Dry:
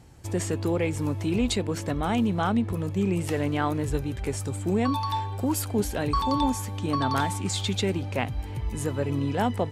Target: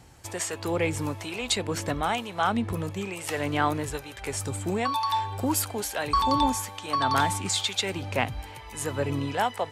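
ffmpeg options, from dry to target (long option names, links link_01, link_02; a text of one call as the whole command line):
ffmpeg -i in.wav -filter_complex "[0:a]acrossover=split=580[link_01][link_02];[link_01]tremolo=f=1.1:d=0.87[link_03];[link_02]acontrast=37[link_04];[link_03][link_04]amix=inputs=2:normalize=0,volume=-1.5dB" out.wav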